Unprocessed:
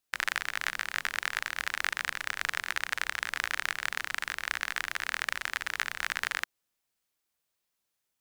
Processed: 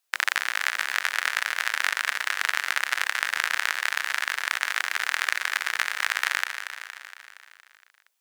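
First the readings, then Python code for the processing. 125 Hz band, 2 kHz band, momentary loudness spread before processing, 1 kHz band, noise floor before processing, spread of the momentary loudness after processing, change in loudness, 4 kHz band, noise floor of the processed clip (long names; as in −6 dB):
below −15 dB, +7.0 dB, 2 LU, +6.5 dB, −83 dBFS, 3 LU, +6.5 dB, +6.5 dB, −62 dBFS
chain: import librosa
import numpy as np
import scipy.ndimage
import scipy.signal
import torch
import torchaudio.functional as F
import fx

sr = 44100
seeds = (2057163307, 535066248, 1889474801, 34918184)

p1 = scipy.signal.sosfilt(scipy.signal.butter(2, 560.0, 'highpass', fs=sr, output='sos'), x)
p2 = p1 + fx.echo_feedback(p1, sr, ms=233, feedback_pct=60, wet_db=-9, dry=0)
y = p2 * 10.0 ** (6.0 / 20.0)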